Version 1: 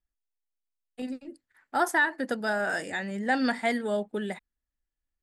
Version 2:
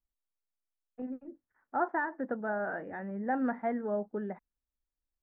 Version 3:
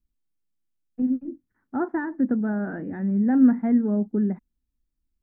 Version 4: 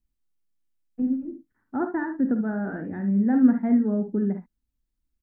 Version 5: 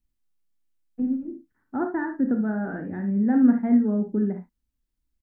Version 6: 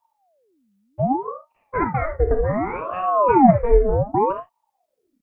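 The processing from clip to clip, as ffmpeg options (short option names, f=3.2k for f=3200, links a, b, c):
-af "lowpass=f=1.4k:w=0.5412,lowpass=f=1.4k:w=1.3066,volume=-4dB"
-af "lowshelf=f=400:t=q:w=1.5:g=13.5"
-af "aecho=1:1:50|60|72:0.282|0.188|0.266,volume=-1dB"
-filter_complex "[0:a]asplit=2[a][b];[b]adelay=33,volume=-11dB[c];[a][c]amix=inputs=2:normalize=0"
-af "aeval=exprs='val(0)*sin(2*PI*560*n/s+560*0.65/0.66*sin(2*PI*0.66*n/s))':c=same,volume=7.5dB"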